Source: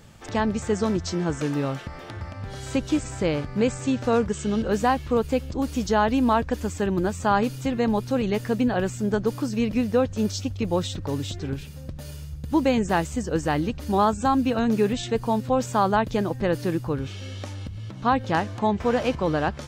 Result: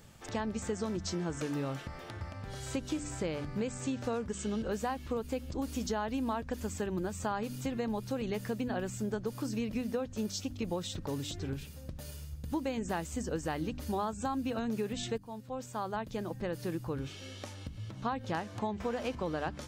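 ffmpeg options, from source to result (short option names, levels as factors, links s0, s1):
-filter_complex "[0:a]asplit=2[s0][s1];[s0]atrim=end=15.18,asetpts=PTS-STARTPTS,afade=t=out:st=15.176:d=0.004:c=hsin:silence=0.141254[s2];[s1]atrim=start=15.18,asetpts=PTS-STARTPTS,afade=t=in:d=2.06:silence=0.141254[s3];[s2][s3]concat=n=2:v=0:a=1,highshelf=f=8200:g=6.5,bandreject=f=49.13:t=h:w=4,bandreject=f=98.26:t=h:w=4,bandreject=f=147.39:t=h:w=4,bandreject=f=196.52:t=h:w=4,bandreject=f=245.65:t=h:w=4,bandreject=f=294.78:t=h:w=4,acompressor=threshold=0.0631:ratio=6,volume=0.473"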